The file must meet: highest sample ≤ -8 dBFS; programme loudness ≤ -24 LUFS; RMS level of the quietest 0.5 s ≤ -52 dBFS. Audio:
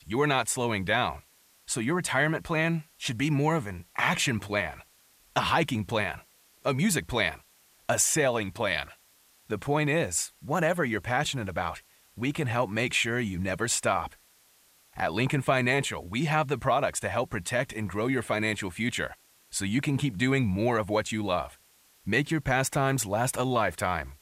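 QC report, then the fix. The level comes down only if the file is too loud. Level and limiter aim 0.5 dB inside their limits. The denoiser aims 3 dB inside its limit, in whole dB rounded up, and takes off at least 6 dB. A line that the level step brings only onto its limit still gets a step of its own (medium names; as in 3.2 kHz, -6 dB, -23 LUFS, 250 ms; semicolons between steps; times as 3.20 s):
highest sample -11.5 dBFS: pass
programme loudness -28.0 LUFS: pass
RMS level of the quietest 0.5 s -62 dBFS: pass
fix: none needed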